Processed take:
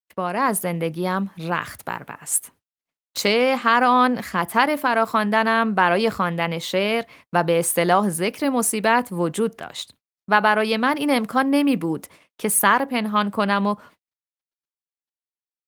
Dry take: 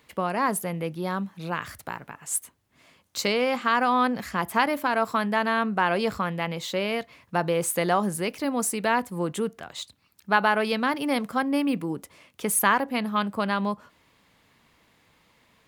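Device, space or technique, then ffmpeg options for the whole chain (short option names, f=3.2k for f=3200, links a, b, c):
video call: -af "highpass=f=100:p=1,dynaudnorm=f=170:g=5:m=5dB,agate=range=-50dB:threshold=-46dB:ratio=16:detection=peak,volume=1.5dB" -ar 48000 -c:a libopus -b:a 32k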